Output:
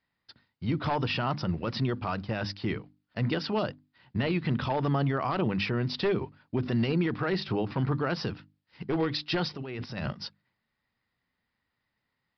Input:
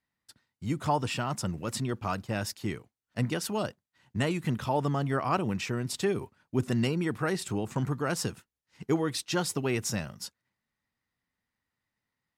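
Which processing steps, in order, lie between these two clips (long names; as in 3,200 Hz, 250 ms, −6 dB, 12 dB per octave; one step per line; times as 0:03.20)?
wavefolder on the positive side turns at −23 dBFS
mains-hum notches 50/100/150/200/250/300 Hz
brickwall limiter −24 dBFS, peak gain reduction 10 dB
0:09.54–0:10.13: compressor whose output falls as the input rises −40 dBFS, ratio −1
downsampling to 11,025 Hz
level +5 dB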